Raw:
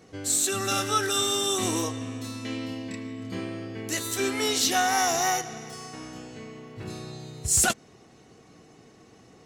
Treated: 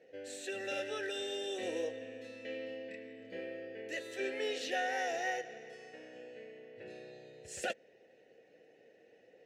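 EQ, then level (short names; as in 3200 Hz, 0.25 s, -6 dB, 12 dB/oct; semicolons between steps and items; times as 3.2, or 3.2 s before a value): vowel filter e; bell 990 Hz +4.5 dB 0.74 oct; notch 1200 Hz, Q 6; +3.0 dB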